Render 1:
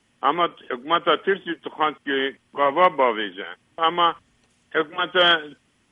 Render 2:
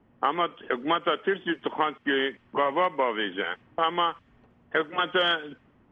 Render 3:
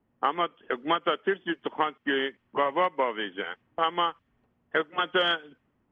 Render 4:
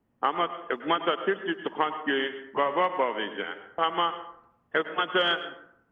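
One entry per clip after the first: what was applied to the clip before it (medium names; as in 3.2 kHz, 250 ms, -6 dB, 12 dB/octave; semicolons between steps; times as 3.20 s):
compression 4:1, threshold -30 dBFS, peak gain reduction 16.5 dB; level-controlled noise filter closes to 870 Hz, open at -26 dBFS; trim +6.5 dB
upward expansion 1.5:1, over -43 dBFS
plate-style reverb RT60 0.68 s, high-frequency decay 0.5×, pre-delay 90 ms, DRR 10.5 dB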